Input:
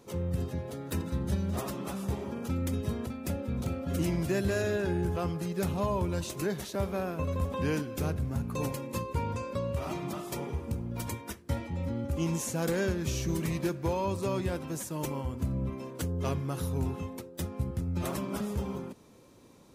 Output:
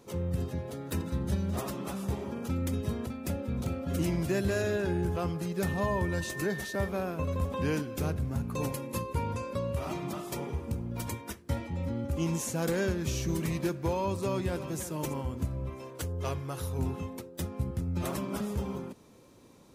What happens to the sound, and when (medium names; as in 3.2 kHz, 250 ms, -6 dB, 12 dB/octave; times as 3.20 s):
5.62–6.87 s: whistle 1.8 kHz -39 dBFS
8.73–9.82 s: peaking EQ 11 kHz +7 dB 0.25 oct
14.20–14.80 s: echo throw 330 ms, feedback 40%, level -12 dB
15.45–16.79 s: peaking EQ 210 Hz -12.5 dB 0.82 oct